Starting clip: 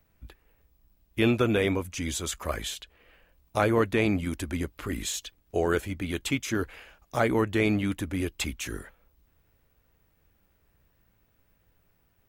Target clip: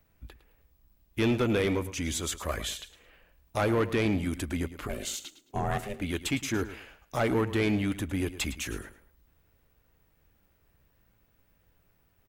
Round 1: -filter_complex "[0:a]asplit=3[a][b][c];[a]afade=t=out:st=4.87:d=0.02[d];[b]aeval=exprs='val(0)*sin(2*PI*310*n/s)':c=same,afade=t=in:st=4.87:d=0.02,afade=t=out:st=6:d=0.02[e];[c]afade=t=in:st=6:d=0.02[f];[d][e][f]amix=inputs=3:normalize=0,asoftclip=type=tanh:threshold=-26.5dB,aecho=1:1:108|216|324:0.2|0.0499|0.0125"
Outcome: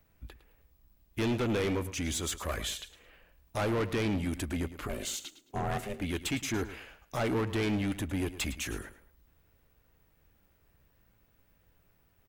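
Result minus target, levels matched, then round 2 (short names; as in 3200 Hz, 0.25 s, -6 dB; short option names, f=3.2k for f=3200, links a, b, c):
soft clip: distortion +6 dB
-filter_complex "[0:a]asplit=3[a][b][c];[a]afade=t=out:st=4.87:d=0.02[d];[b]aeval=exprs='val(0)*sin(2*PI*310*n/s)':c=same,afade=t=in:st=4.87:d=0.02,afade=t=out:st=6:d=0.02[e];[c]afade=t=in:st=6:d=0.02[f];[d][e][f]amix=inputs=3:normalize=0,asoftclip=type=tanh:threshold=-19.5dB,aecho=1:1:108|216|324:0.2|0.0499|0.0125"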